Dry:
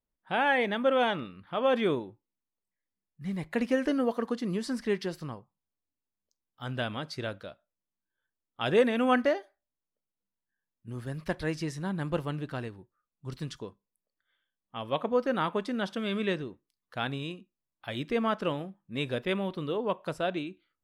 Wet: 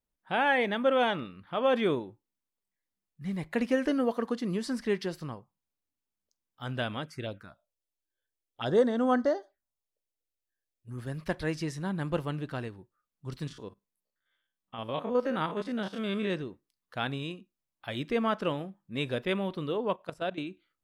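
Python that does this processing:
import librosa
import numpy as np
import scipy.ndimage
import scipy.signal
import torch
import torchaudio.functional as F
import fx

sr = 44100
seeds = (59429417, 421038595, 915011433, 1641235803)

y = fx.env_phaser(x, sr, low_hz=190.0, high_hz=2500.0, full_db=-28.5, at=(7.04, 10.97), fade=0.02)
y = fx.spec_steps(y, sr, hold_ms=50, at=(13.45, 16.32), fade=0.02)
y = fx.level_steps(y, sr, step_db=15, at=(19.96, 20.38))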